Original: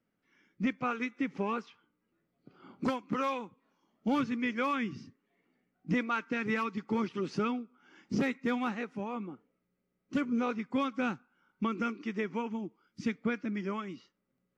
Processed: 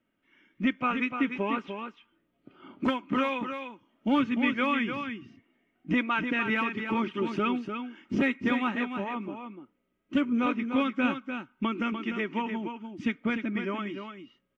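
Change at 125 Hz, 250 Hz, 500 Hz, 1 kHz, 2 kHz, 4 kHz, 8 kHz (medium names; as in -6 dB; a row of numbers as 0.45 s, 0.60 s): +1.5 dB, +4.5 dB, +2.5 dB, +4.0 dB, +6.5 dB, +7.5 dB, no reading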